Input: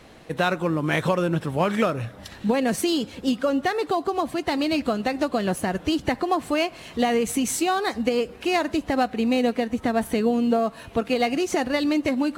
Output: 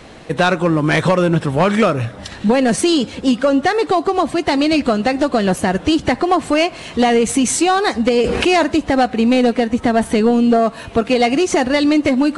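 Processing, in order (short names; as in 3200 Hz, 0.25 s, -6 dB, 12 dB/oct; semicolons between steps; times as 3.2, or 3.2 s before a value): sine folder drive 4 dB, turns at -8 dBFS; downsampling 22050 Hz; 8.24–8.64 fast leveller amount 70%; gain +1.5 dB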